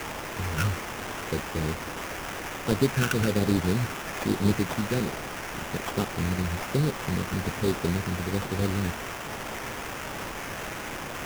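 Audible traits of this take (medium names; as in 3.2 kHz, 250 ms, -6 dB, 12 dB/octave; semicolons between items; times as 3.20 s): a quantiser's noise floor 6-bit, dither triangular; phasing stages 8, 1.2 Hz, lowest notch 710–2200 Hz; aliases and images of a low sample rate 4.2 kHz, jitter 20%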